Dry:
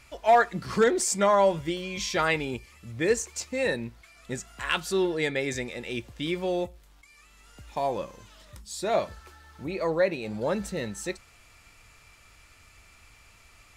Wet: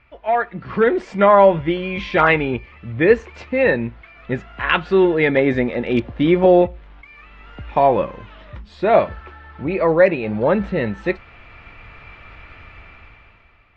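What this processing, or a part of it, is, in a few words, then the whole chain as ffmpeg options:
action camera in a waterproof case: -filter_complex "[0:a]asettb=1/sr,asplit=3[link_01][link_02][link_03];[link_01]atrim=end=5.284[link_04];[link_02]atrim=start=5.28:end=6.62,asetpts=PTS-STARTPTS,afade=type=in:duration=0.004:curve=qsin,afade=type=out:start_time=1.336:duration=0.004:curve=qsin,equalizer=frequency=250:width_type=o:width=0.67:gain=5,equalizer=frequency=630:width_type=o:width=0.67:gain=4,equalizer=frequency=2500:width_type=o:width=0.67:gain=-5[link_05];[link_03]atrim=start=6.616[link_06];[link_04][link_05]acrossfade=duration=0.004:curve1=hsin:curve2=qsin[link_07];[link_07][link_06]acrossfade=duration=0.004:curve1=qsin:curve2=hsin,lowpass=frequency=2700:width=0.5412,lowpass=frequency=2700:width=1.3066,dynaudnorm=framelen=200:gausssize=9:maxgain=16dB" -ar 44100 -c:a aac -b:a 48k

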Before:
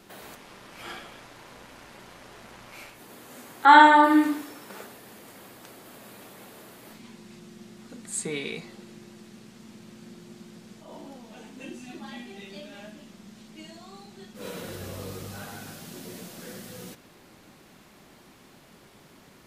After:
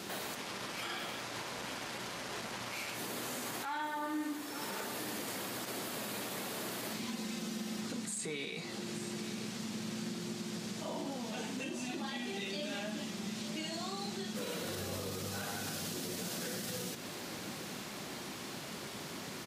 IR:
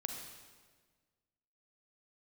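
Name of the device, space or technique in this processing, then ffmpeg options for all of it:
broadcast voice chain: -filter_complex "[0:a]asettb=1/sr,asplit=3[link_01][link_02][link_03];[link_01]atrim=end=7.084[link_04];[link_02]atrim=start=7.08:end=7.81,asetpts=PTS-STARTPTS,afade=type=in:duration=0.004:curve=qsin,afade=type=out:start_time=0.726:duration=0.004:curve=qsin,aecho=1:1:3.9:0.75,atrim=end_sample=32193[link_05];[link_03]atrim=start=7.806[link_06];[link_04][link_05]acrossfade=duration=0.004:curve1=hsin:curve2=qsin[link_07];[link_07][link_06]acrossfade=duration=0.004:curve1=qsin:curve2=hsin,highpass=96,deesser=0.6,acompressor=threshold=-45dB:ratio=4,equalizer=frequency=5400:width_type=o:width=1.8:gain=5,alimiter=level_in=15dB:limit=-24dB:level=0:latency=1:release=36,volume=-15dB,aecho=1:1:877:0.251,volume=8.5dB"

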